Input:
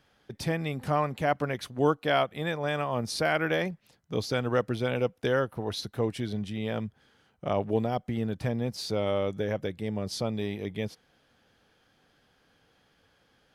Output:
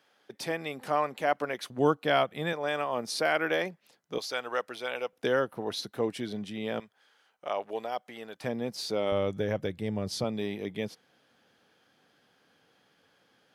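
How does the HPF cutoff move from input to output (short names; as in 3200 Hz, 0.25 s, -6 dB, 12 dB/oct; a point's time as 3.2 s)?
340 Hz
from 1.7 s 140 Hz
from 2.53 s 300 Hz
from 4.18 s 670 Hz
from 5.13 s 210 Hz
from 6.8 s 650 Hz
from 8.44 s 230 Hz
from 9.12 s 60 Hz
from 10.24 s 160 Hz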